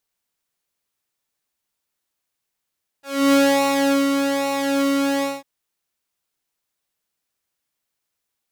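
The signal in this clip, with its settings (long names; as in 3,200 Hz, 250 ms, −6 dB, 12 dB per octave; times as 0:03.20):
subtractive patch with pulse-width modulation C#4, detune 7 cents, sub −25.5 dB, filter highpass, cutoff 150 Hz, Q 0.88, filter envelope 2.5 octaves, filter decay 0.20 s, filter sustain 25%, attack 300 ms, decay 0.75 s, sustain −6 dB, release 0.20 s, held 2.20 s, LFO 1.2 Hz, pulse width 25%, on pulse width 8%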